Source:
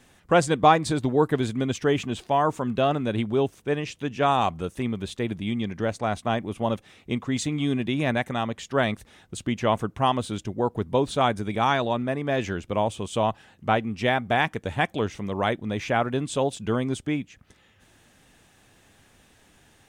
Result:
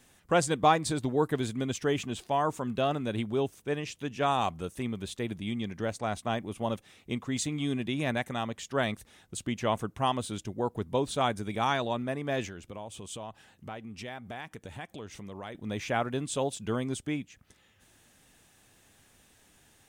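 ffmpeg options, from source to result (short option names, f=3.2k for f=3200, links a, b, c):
-filter_complex "[0:a]asettb=1/sr,asplit=3[a][b][c];[a]atrim=end=12.464[d];[b]atrim=start=12.46:end=15.55,asetpts=PTS-STARTPTS,afade=t=in:d=0.004:c=qsin,afade=t=out:st=3.086:d=0.004:c=qsin,acompressor=threshold=-35dB:ratio=3:attack=3.2:release=140:knee=1:detection=peak[e];[c]atrim=start=15.546[f];[d][e]acrossfade=d=0.004:c1=hsin:c2=qsin[g];[g][f]acrossfade=d=0.004:c1=qsin:c2=hsin,highshelf=f=5.9k:g=9,volume=-6dB"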